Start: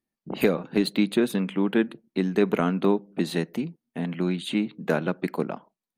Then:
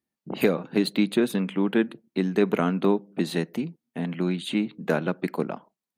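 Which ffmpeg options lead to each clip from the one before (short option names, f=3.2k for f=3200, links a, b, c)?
-af "highpass=55"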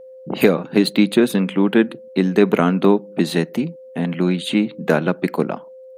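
-af "aeval=exprs='val(0)+0.00562*sin(2*PI*520*n/s)':c=same,volume=7.5dB"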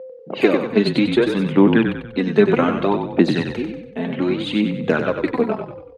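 -filter_complex "[0:a]aphaser=in_gain=1:out_gain=1:delay=4.6:decay=0.6:speed=0.63:type=sinusoidal,highpass=220,lowpass=4.3k,asplit=2[a][b];[b]asplit=5[c][d][e][f][g];[c]adelay=95,afreqshift=-35,volume=-6.5dB[h];[d]adelay=190,afreqshift=-70,volume=-13.8dB[i];[e]adelay=285,afreqshift=-105,volume=-21.2dB[j];[f]adelay=380,afreqshift=-140,volume=-28.5dB[k];[g]adelay=475,afreqshift=-175,volume=-35.8dB[l];[h][i][j][k][l]amix=inputs=5:normalize=0[m];[a][m]amix=inputs=2:normalize=0,volume=-2dB"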